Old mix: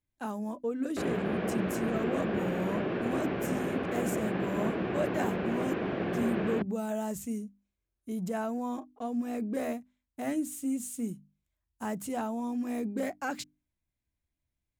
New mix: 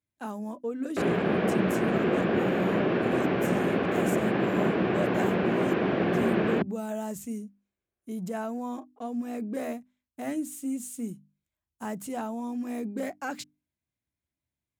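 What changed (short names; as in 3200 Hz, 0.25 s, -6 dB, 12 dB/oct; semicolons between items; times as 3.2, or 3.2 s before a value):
background +6.5 dB; master: add HPF 94 Hz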